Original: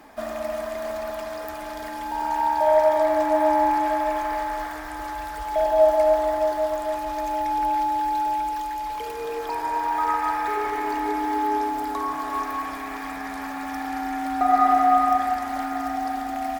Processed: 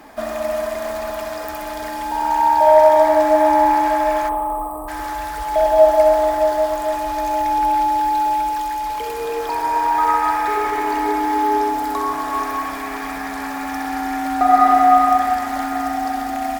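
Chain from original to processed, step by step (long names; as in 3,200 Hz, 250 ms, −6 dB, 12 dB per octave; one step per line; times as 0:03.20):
delay with a high-pass on its return 64 ms, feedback 64%, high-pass 5,100 Hz, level −3 dB
time-frequency box erased 0:04.29–0:04.88, 1,300–7,700 Hz
spring reverb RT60 1.6 s, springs 58 ms, chirp 50 ms, DRR 12 dB
level +5.5 dB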